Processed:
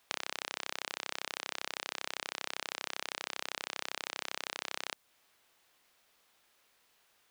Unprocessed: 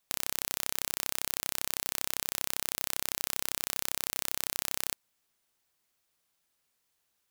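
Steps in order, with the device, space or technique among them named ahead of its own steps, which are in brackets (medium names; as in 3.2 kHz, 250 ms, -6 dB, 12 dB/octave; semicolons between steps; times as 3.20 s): baby monitor (band-pass 370–3900 Hz; compression, threshold -45 dBFS, peak gain reduction 11.5 dB; white noise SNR 30 dB); trim +11.5 dB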